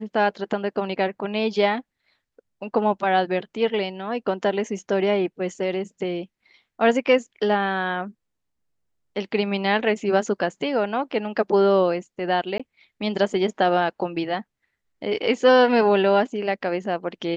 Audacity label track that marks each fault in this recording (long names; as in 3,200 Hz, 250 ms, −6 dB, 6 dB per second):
12.580000	12.600000	drop-out 16 ms